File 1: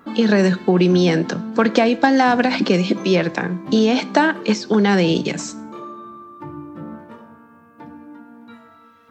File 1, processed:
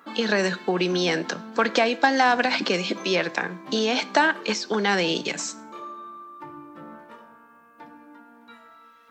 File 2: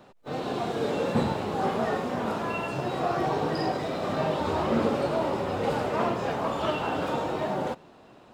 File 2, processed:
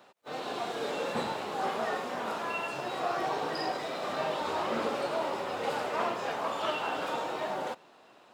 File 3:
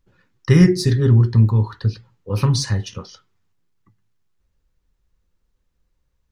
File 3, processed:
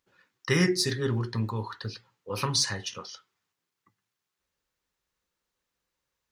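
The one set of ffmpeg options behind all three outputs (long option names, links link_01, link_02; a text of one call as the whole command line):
ffmpeg -i in.wav -af "highpass=frequency=850:poles=1" out.wav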